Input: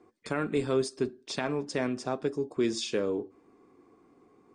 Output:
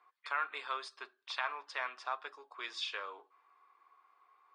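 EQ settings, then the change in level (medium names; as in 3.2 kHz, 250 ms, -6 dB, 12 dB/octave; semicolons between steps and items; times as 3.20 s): ladder high-pass 930 Hz, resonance 50%; resonant high shelf 5.2 kHz -12 dB, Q 1.5; +5.5 dB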